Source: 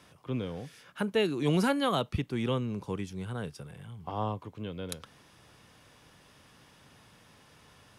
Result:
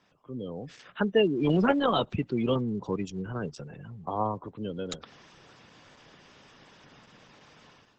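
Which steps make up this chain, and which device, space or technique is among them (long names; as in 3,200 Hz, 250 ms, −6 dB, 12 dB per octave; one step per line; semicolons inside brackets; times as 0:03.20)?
noise-suppressed video call (high-pass filter 140 Hz 12 dB per octave; gate on every frequency bin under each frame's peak −20 dB strong; automatic gain control gain up to 13 dB; level −7.5 dB; Opus 12 kbit/s 48,000 Hz)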